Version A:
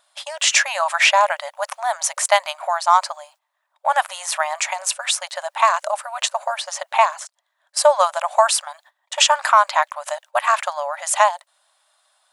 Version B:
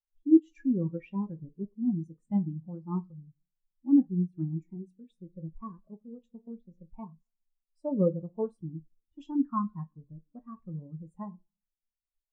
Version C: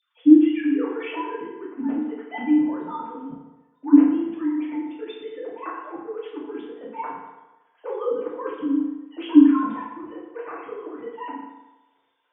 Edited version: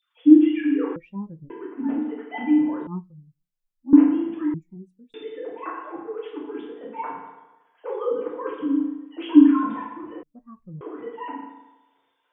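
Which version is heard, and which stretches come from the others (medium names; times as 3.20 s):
C
0.96–1.50 s: from B
2.87–3.93 s: from B
4.54–5.14 s: from B
10.23–10.81 s: from B
not used: A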